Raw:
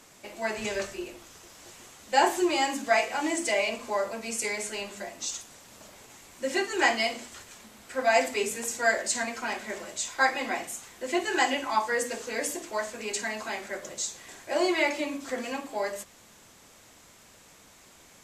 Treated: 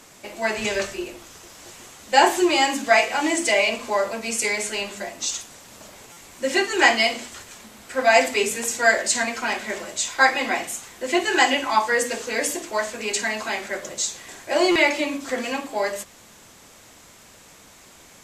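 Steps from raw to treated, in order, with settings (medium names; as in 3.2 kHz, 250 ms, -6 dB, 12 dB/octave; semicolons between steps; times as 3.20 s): dynamic bell 3 kHz, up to +3 dB, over -43 dBFS, Q 0.82; buffer glitch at 6.12/14.71 s, samples 256, times 7; trim +6 dB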